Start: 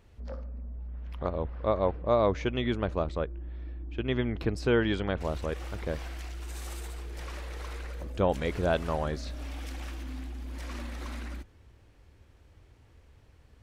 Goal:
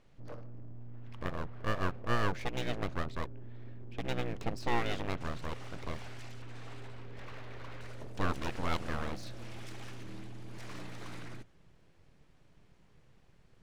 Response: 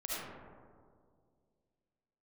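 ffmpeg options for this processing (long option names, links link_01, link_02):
-af "asetnsamples=nb_out_samples=441:pad=0,asendcmd='6.42 lowpass f 3100;7.81 lowpass f 10000',lowpass=8000,aeval=exprs='abs(val(0))':channel_layout=same,volume=-3.5dB"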